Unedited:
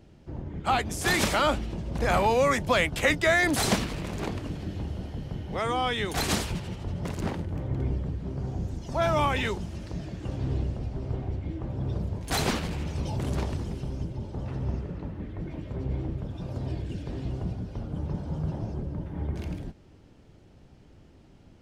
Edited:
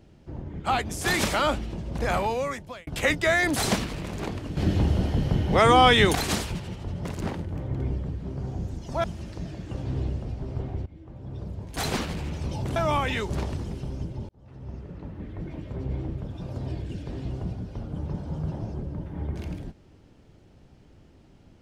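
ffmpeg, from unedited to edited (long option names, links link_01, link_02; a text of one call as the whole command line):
ffmpeg -i in.wav -filter_complex "[0:a]asplit=9[link_01][link_02][link_03][link_04][link_05][link_06][link_07][link_08][link_09];[link_01]atrim=end=2.87,asetpts=PTS-STARTPTS,afade=type=out:start_time=1.98:duration=0.89[link_10];[link_02]atrim=start=2.87:end=4.572,asetpts=PTS-STARTPTS,afade=type=in:duration=0.004:curve=hsin[link_11];[link_03]atrim=start=4.568:end=6.152,asetpts=PTS-STARTPTS,volume=11dB[link_12];[link_04]atrim=start=6.148:end=9.042[link_13];[link_05]atrim=start=9.578:end=11.4,asetpts=PTS-STARTPTS,afade=type=out:start_time=1.818:duration=0.004:curve=hsin:silence=0.158489[link_14];[link_06]atrim=start=11.4:end=13.302,asetpts=PTS-STARTPTS,afade=type=in:duration=1.28:silence=0.158489[link_15];[link_07]atrim=start=9.038:end=9.582[link_16];[link_08]atrim=start=13.298:end=14.29,asetpts=PTS-STARTPTS,afade=type=out:start_time=0.988:duration=0.004:curve=hsin[link_17];[link_09]atrim=start=14.29,asetpts=PTS-STARTPTS,afade=type=in:duration=1.04[link_18];[link_10][link_11]concat=n=2:v=0:a=1[link_19];[link_19][link_12]acrossfade=duration=0.004:curve1=hsin:curve2=hsin[link_20];[link_20][link_13]acrossfade=duration=0.004:curve1=hsin:curve2=hsin[link_21];[link_14][link_15]concat=n=2:v=0:a=1[link_22];[link_21][link_22]acrossfade=duration=0.004:curve1=hsin:curve2=hsin[link_23];[link_23][link_16]acrossfade=duration=0.004:curve1=hsin:curve2=hsin[link_24];[link_17][link_18]concat=n=2:v=0:a=1[link_25];[link_24][link_25]acrossfade=duration=0.004:curve1=hsin:curve2=hsin" out.wav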